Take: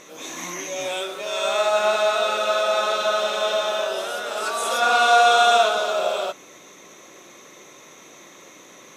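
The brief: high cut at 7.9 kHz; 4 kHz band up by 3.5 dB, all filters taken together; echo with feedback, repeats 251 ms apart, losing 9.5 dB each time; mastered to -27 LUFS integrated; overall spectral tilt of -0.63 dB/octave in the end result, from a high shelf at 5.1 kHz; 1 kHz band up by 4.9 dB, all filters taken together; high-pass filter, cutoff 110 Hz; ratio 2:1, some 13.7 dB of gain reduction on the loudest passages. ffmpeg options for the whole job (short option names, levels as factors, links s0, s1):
-af "highpass=110,lowpass=7900,equalizer=f=1000:t=o:g=8,equalizer=f=4000:t=o:g=6,highshelf=f=5100:g=-6,acompressor=threshold=0.02:ratio=2,aecho=1:1:251|502|753|1004:0.335|0.111|0.0365|0.012,volume=1.06"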